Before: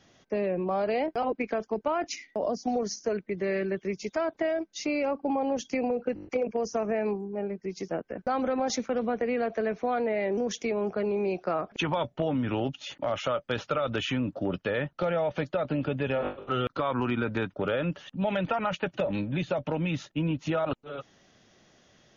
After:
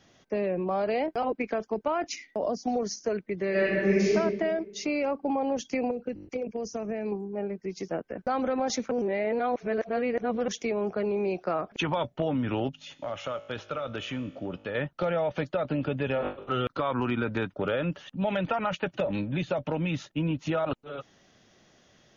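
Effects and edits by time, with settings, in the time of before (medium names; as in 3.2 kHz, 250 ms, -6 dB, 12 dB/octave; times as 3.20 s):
3.50–4.09 s: reverb throw, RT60 1.4 s, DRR -8.5 dB
5.91–7.12 s: peaking EQ 1.1 kHz -9 dB 2.5 oct
8.91–10.48 s: reverse
12.69–14.75 s: feedback comb 52 Hz, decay 1.5 s, mix 50%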